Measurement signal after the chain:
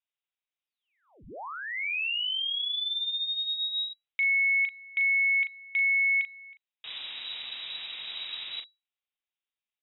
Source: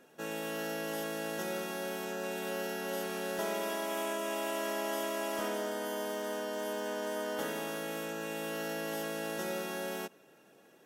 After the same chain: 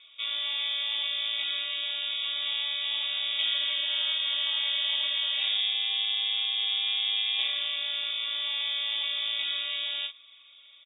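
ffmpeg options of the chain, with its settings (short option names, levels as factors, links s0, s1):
-filter_complex "[0:a]lowpass=f=3300:t=q:w=0.5098,lowpass=f=3300:t=q:w=0.6013,lowpass=f=3300:t=q:w=0.9,lowpass=f=3300:t=q:w=2.563,afreqshift=-3900,aexciter=amount=3.5:drive=0.9:freq=2200,asplit=2[s0][s1];[s1]adelay=39,volume=0.422[s2];[s0][s2]amix=inputs=2:normalize=0"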